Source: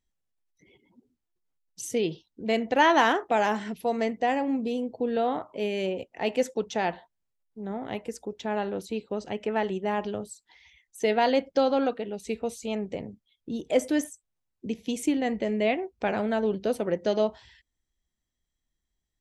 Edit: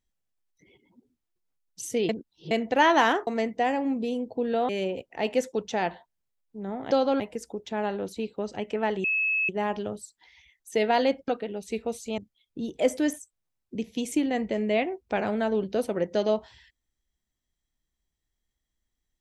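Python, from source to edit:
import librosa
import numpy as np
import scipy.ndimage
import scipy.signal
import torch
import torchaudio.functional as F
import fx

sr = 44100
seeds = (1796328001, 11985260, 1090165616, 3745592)

y = fx.edit(x, sr, fx.reverse_span(start_s=2.09, length_s=0.42),
    fx.cut(start_s=3.27, length_s=0.63),
    fx.cut(start_s=5.32, length_s=0.39),
    fx.insert_tone(at_s=9.77, length_s=0.45, hz=2590.0, db=-22.5),
    fx.move(start_s=11.56, length_s=0.29, to_s=7.93),
    fx.cut(start_s=12.75, length_s=0.34), tone=tone)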